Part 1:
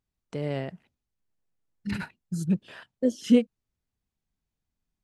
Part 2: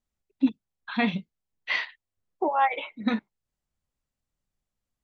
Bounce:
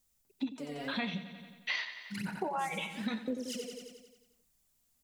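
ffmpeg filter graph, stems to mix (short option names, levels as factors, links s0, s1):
-filter_complex "[0:a]highpass=f=150:w=0.5412,highpass=f=150:w=1.3066,acompressor=threshold=0.0316:ratio=6,aphaser=in_gain=1:out_gain=1:delay=4.3:decay=0.8:speed=0.97:type=sinusoidal,adelay=250,volume=0.596,asplit=2[s0][s1];[s1]volume=0.473[s2];[1:a]highshelf=f=4600:g=7.5,acompressor=threshold=0.0562:ratio=3,volume=1.33,asplit=2[s3][s4];[s4]volume=0.188[s5];[s2][s5]amix=inputs=2:normalize=0,aecho=0:1:89|178|267|356|445|534|623|712|801:1|0.58|0.336|0.195|0.113|0.0656|0.0381|0.0221|0.0128[s6];[s0][s3][s6]amix=inputs=3:normalize=0,highshelf=f=5500:g=11.5,acompressor=threshold=0.01:ratio=2"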